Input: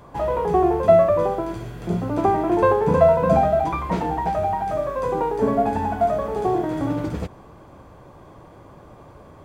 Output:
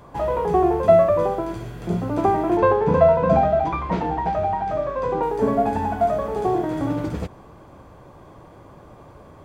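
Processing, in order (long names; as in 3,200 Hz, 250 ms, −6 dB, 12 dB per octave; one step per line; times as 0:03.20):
0:02.57–0:05.23: low-pass filter 4,900 Hz 12 dB per octave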